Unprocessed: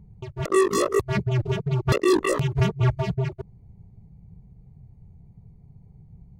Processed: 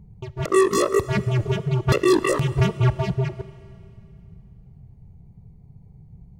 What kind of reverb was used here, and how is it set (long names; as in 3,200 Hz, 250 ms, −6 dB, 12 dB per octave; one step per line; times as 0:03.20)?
four-comb reverb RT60 2.7 s, combs from 26 ms, DRR 15.5 dB
level +2 dB